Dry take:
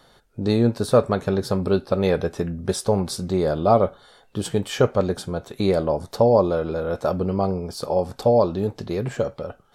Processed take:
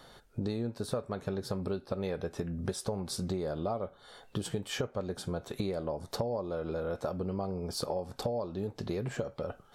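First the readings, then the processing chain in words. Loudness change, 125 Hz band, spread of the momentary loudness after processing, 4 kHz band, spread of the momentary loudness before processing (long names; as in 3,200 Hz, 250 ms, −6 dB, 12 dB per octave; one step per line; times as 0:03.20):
−13.5 dB, −12.0 dB, 4 LU, −8.0 dB, 9 LU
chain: downward compressor 10 to 1, threshold −31 dBFS, peak gain reduction 20.5 dB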